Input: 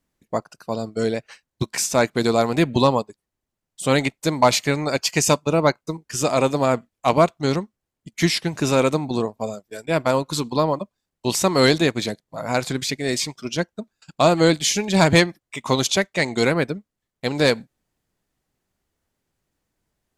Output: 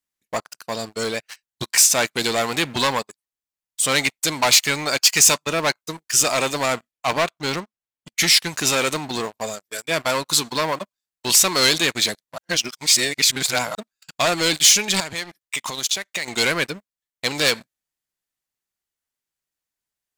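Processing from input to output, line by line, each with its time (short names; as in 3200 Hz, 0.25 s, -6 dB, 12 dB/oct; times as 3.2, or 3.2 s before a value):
6.91–8.19 high shelf 4800 Hz -10 dB
12.38–13.75 reverse
15–16.28 compressor 20:1, threshold -27 dBFS
whole clip: high shelf 11000 Hz +5.5 dB; sample leveller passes 3; tilt shelf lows -8.5 dB, about 840 Hz; gain -9 dB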